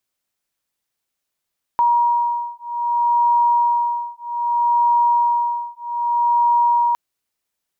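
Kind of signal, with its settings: beating tones 951 Hz, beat 0.63 Hz, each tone -18 dBFS 5.16 s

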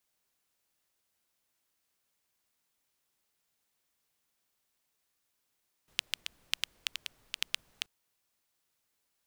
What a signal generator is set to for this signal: rain from filtered ticks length 1.98 s, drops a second 6.1, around 3 kHz, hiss -27 dB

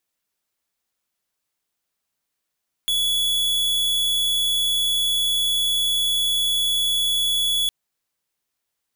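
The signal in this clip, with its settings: tone square 3.39 kHz -21 dBFS 4.81 s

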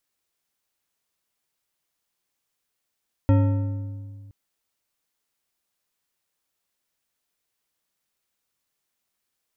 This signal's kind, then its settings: metal hit bar, length 1.02 s, lowest mode 101 Hz, modes 8, decay 2.11 s, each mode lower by 6 dB, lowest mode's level -13.5 dB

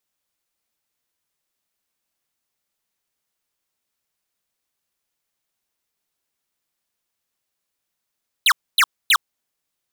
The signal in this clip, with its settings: burst of laser zaps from 4.3 kHz, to 990 Hz, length 0.06 s square, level -13.5 dB, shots 3, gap 0.26 s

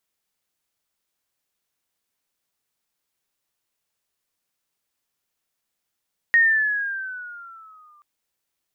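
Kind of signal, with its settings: gliding synth tone sine, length 1.68 s, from 1.87 kHz, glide -8 st, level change -39.5 dB, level -11.5 dB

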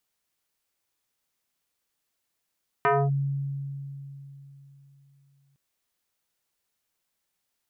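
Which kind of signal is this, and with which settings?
FM tone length 2.71 s, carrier 139 Hz, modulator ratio 4.02, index 2.9, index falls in 0.25 s linear, decay 3.52 s, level -17.5 dB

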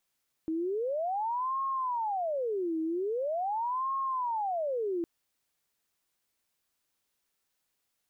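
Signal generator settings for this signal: siren wail 319–1080 Hz 0.43 per s sine -28.5 dBFS 4.56 s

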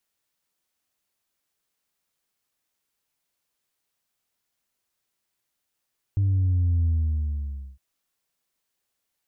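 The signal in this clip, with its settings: sub drop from 100 Hz, over 1.61 s, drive 1 dB, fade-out 0.92 s, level -19 dB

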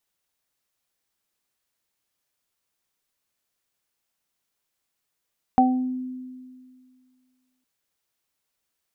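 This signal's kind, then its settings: additive tone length 2.06 s, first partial 255 Hz, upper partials -15/5 dB, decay 2.08 s, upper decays 0.54/0.37 s, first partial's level -16 dB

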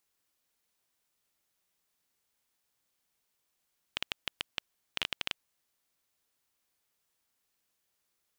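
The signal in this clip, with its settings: random clicks 9.4 per s -12.5 dBFS 1.51 s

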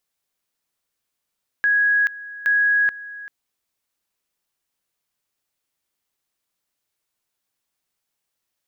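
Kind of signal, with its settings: two-level tone 1.66 kHz -14.5 dBFS, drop 18 dB, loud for 0.43 s, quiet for 0.39 s, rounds 2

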